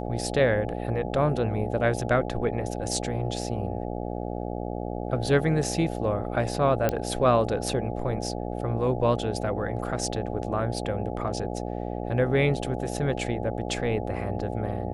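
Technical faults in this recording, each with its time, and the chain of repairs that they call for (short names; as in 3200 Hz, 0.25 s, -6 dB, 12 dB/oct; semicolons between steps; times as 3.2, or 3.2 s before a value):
buzz 60 Hz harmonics 14 -32 dBFS
6.89 pop -10 dBFS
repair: de-click; de-hum 60 Hz, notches 14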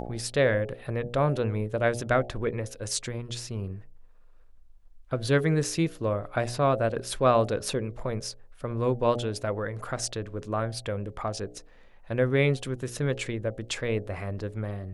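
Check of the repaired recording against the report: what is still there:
none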